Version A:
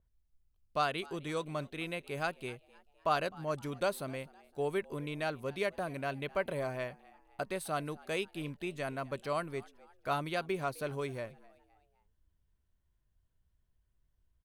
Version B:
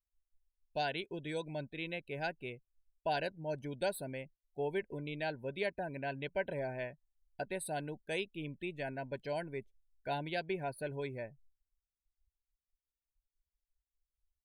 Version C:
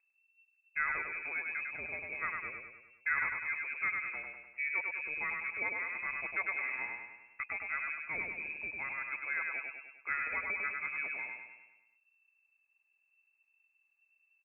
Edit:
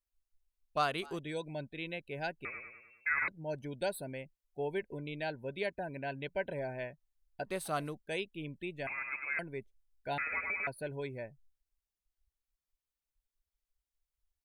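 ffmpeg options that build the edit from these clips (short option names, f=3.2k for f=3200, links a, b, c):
-filter_complex "[0:a]asplit=2[a][b];[2:a]asplit=3[c][d][e];[1:a]asplit=6[f][g][h][i][j][k];[f]atrim=end=0.772[l];[a]atrim=start=0.768:end=1.192[m];[g]atrim=start=1.188:end=2.452[n];[c]atrim=start=2.448:end=3.282[o];[h]atrim=start=3.278:end=7.54[p];[b]atrim=start=7.44:end=7.96[q];[i]atrim=start=7.86:end=8.872[r];[d]atrim=start=8.868:end=9.392[s];[j]atrim=start=9.388:end=10.182[t];[e]atrim=start=10.178:end=10.672[u];[k]atrim=start=10.668[v];[l][m]acrossfade=d=0.004:c1=hsin:c2=hsin[w];[w][n]acrossfade=d=0.004:c1=hsin:c2=hsin[x];[x][o]acrossfade=d=0.004:c1=hsin:c2=hsin[y];[y][p]acrossfade=d=0.004:c1=hsin:c2=hsin[z];[z][q]acrossfade=d=0.1:c1=tri:c2=tri[aa];[aa][r]acrossfade=d=0.1:c1=tri:c2=tri[ab];[ab][s]acrossfade=d=0.004:c1=hsin:c2=hsin[ac];[ac][t]acrossfade=d=0.004:c1=hsin:c2=hsin[ad];[ad][u]acrossfade=d=0.004:c1=hsin:c2=hsin[ae];[ae][v]acrossfade=d=0.004:c1=hsin:c2=hsin"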